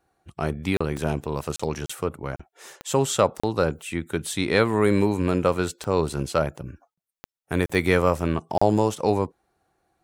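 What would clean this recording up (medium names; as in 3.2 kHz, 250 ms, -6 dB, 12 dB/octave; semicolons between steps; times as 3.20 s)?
de-click; interpolate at 0.77/1.56/1.86/2.36/3.40/6.94/7.66/8.58 s, 35 ms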